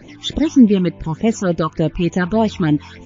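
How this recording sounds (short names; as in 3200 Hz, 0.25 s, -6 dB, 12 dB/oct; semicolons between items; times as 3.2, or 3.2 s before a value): phasing stages 8, 3.4 Hz, lowest notch 510–1500 Hz; MP3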